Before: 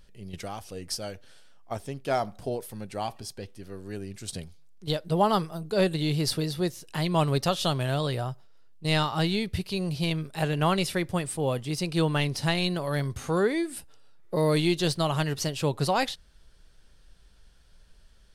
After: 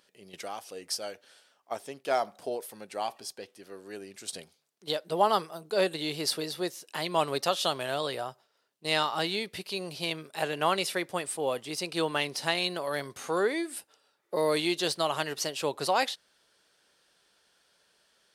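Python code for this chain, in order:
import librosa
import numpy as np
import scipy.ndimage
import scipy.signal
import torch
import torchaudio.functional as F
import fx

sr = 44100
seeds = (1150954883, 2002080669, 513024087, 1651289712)

y = scipy.signal.sosfilt(scipy.signal.butter(2, 390.0, 'highpass', fs=sr, output='sos'), x)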